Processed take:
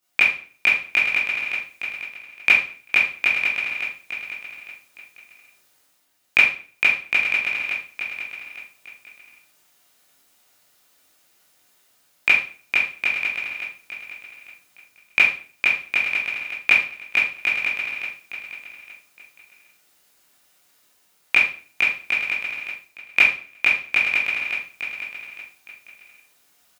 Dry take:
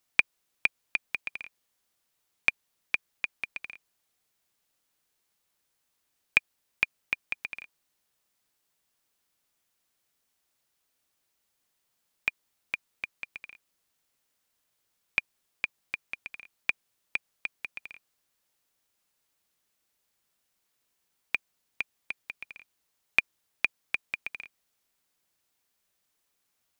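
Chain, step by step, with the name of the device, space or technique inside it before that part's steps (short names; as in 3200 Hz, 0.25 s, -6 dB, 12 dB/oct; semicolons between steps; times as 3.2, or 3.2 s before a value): feedback echo 0.864 s, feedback 22%, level -14 dB; far laptop microphone (reverb RT60 0.45 s, pre-delay 16 ms, DRR -8.5 dB; HPF 110 Hz 6 dB/oct; AGC gain up to 9.5 dB); gain -1 dB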